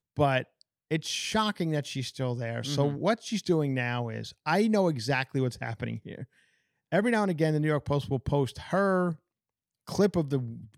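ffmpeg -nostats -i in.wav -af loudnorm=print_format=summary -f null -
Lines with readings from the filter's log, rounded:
Input Integrated:    -28.9 LUFS
Input True Peak:     -11.0 dBTP
Input LRA:             1.4 LU
Input Threshold:     -39.3 LUFS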